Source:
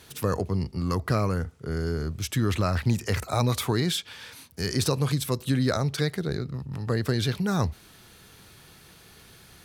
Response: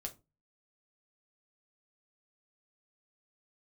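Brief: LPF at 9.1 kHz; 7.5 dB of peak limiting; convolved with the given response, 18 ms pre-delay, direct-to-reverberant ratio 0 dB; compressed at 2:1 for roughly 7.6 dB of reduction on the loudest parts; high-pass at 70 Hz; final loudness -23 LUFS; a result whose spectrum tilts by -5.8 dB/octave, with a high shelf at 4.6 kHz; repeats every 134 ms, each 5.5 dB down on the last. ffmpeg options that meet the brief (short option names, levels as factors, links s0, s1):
-filter_complex "[0:a]highpass=70,lowpass=9100,highshelf=f=4600:g=-5.5,acompressor=threshold=0.02:ratio=2,alimiter=level_in=1.33:limit=0.0631:level=0:latency=1,volume=0.75,aecho=1:1:134|268|402|536|670|804|938:0.531|0.281|0.149|0.079|0.0419|0.0222|0.0118,asplit=2[s0][s1];[1:a]atrim=start_sample=2205,adelay=18[s2];[s1][s2]afir=irnorm=-1:irlink=0,volume=1.33[s3];[s0][s3]amix=inputs=2:normalize=0,volume=2.82"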